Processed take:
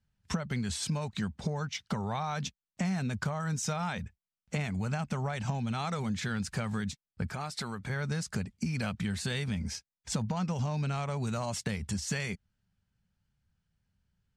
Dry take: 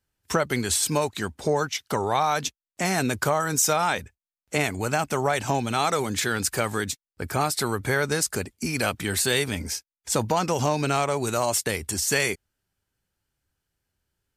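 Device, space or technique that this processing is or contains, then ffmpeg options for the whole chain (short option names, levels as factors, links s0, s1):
jukebox: -filter_complex "[0:a]lowpass=5900,lowshelf=f=250:t=q:w=3:g=7.5,acompressor=threshold=0.0501:ratio=5,asettb=1/sr,asplit=3[s0][s1][s2];[s0]atrim=end=7.304[s3];[s1]atrim=start=7.3:end=7.9,asetpts=PTS-STARTPTS,afade=t=in:d=0.004:c=qsin,afade=t=out:st=0.596:d=0.004:c=qsin,equalizer=f=91:w=0.45:g=-9.5[s4];[s2]atrim=start=7.896[s5];[s3][s4]acrossfade=d=0.004:c1=hsin:c2=qsin[s6];[s6][s5]acrossfade=d=0.004:c1=qsin:c2=hsin,volume=0.631"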